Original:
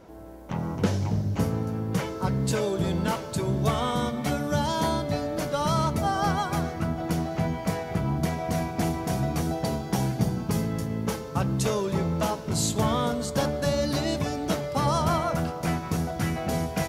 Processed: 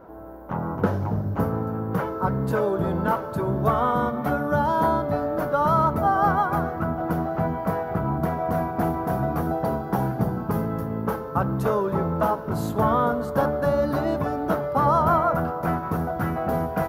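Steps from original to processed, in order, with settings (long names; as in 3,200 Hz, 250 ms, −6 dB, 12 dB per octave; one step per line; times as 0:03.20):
drawn EQ curve 150 Hz 0 dB, 1,400 Hz +8 dB, 2,200 Hz −8 dB, 7,900 Hz −19 dB, 14,000 Hz +3 dB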